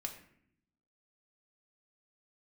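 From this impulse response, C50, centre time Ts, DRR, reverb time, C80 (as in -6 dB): 9.0 dB, 16 ms, 2.0 dB, 0.65 s, 11.5 dB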